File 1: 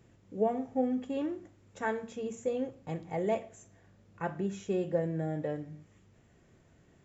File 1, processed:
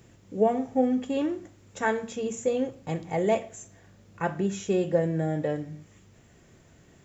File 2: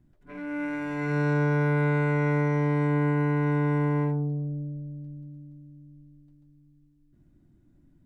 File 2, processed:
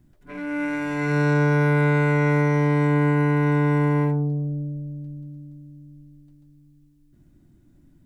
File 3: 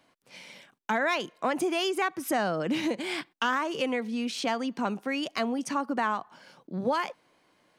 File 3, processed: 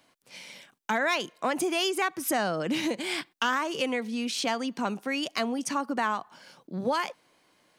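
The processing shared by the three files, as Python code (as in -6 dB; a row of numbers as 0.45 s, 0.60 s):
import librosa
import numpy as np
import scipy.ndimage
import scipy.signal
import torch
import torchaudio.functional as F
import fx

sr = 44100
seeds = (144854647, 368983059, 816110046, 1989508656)

y = fx.high_shelf(x, sr, hz=3400.0, db=7.0)
y = y * 10.0 ** (-12 / 20.0) / np.max(np.abs(y))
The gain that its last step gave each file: +6.0 dB, +4.5 dB, -0.5 dB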